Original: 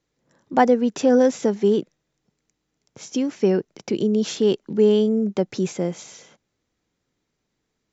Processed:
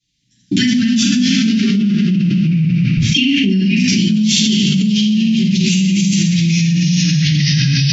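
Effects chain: HPF 190 Hz 6 dB/oct; expander -41 dBFS; inverse Chebyshev band-stop 530–1100 Hz, stop band 70 dB; low shelf 350 Hz -3.5 dB; 1.07–3.5 LFO low-pass sine 1.5 Hz 540–2900 Hz; air absorption 65 m; thin delay 72 ms, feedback 75%, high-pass 1500 Hz, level -7.5 dB; shoebox room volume 170 m³, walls mixed, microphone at 3.7 m; echoes that change speed 0.125 s, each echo -2 st, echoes 2, each echo -6 dB; fast leveller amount 100%; gain -1.5 dB

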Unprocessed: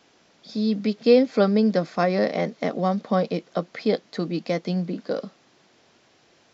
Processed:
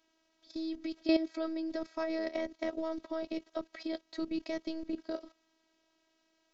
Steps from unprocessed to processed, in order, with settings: level quantiser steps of 14 dB; robotiser 322 Hz; gain -3 dB

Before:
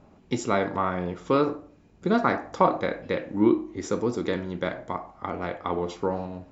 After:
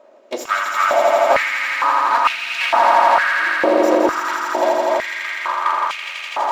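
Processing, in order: minimum comb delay 3.2 ms; swelling echo 83 ms, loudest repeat 5, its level -4 dB; stepped high-pass 2.2 Hz 540–2500 Hz; gain +4.5 dB

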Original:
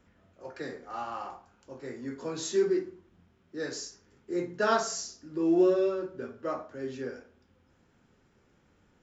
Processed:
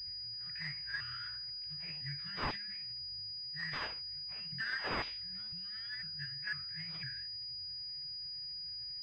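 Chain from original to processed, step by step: repeated pitch sweeps +5.5 st, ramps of 0.502 s; compressor 5:1, threshold -31 dBFS, peak gain reduction 11.5 dB; Chebyshev band-stop 150–1700 Hz, order 4; pulse-width modulation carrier 4900 Hz; gain +6.5 dB

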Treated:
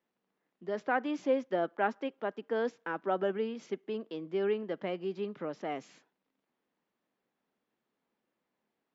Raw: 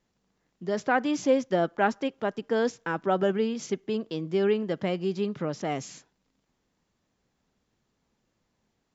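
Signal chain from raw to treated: three-band isolator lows -24 dB, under 200 Hz, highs -16 dB, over 3600 Hz; gain -5.5 dB

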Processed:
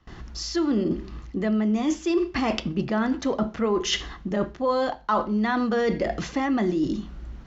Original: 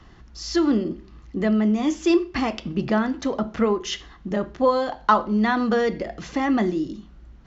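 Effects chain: gate with hold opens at -40 dBFS; reverse; compressor 5:1, threshold -30 dBFS, peak gain reduction 17 dB; reverse; gain +8 dB

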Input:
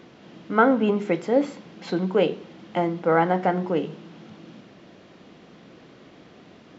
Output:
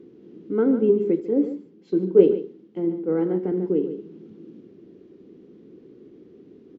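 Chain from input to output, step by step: EQ curve 160 Hz 0 dB, 410 Hz +12 dB, 630 Hz -14 dB; tapped delay 82/145 ms -16.5/-10.5 dB; 1.2–3.52 three-band expander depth 70%; gain -5 dB

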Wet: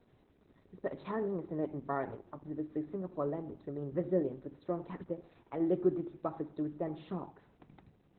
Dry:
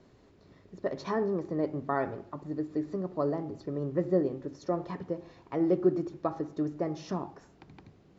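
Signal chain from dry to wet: gain -4.5 dB; Opus 8 kbps 48000 Hz

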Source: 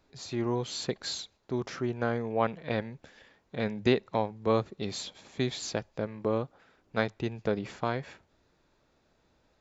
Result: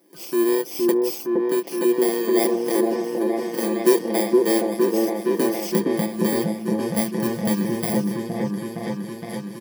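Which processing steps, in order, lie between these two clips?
FFT order left unsorted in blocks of 32 samples; resonant low shelf 130 Hz -12.5 dB, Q 3; comb 5.9 ms, depth 70%; in parallel at +1 dB: compressor, threshold -37 dBFS, peak gain reduction 18.5 dB; on the sum: high-pass sweep 340 Hz -> 99 Hz, 5.16–6.37; on a send: repeats that get brighter 0.465 s, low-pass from 750 Hz, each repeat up 1 oct, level 0 dB; on the sum: ending taper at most 420 dB/s; gain -1 dB

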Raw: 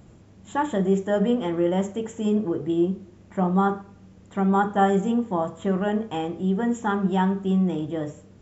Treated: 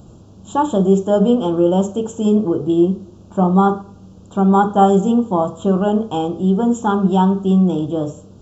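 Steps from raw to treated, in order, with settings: Butterworth band-stop 2000 Hz, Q 1.2; gain +8 dB

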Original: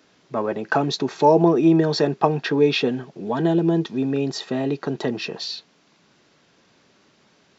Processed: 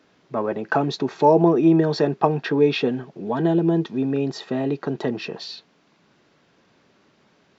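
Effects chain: high shelf 4200 Hz -10 dB

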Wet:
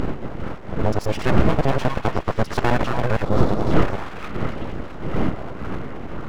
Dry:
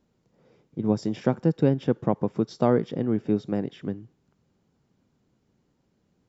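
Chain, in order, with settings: local time reversal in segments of 66 ms; wind noise 200 Hz -26 dBFS; small resonant body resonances 1300/2000/2800 Hz, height 17 dB; in parallel at +2 dB: limiter -17 dBFS, peak gain reduction 12.5 dB; on the sum: upward compressor, threshold -21 dBFS; on a send: delay with a stepping band-pass 0.227 s, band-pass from 680 Hz, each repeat 0.7 oct, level -1.5 dB; on the sum: full-wave rectifier; spectral gain 3.25–3.73, 1400–3300 Hz -7 dB

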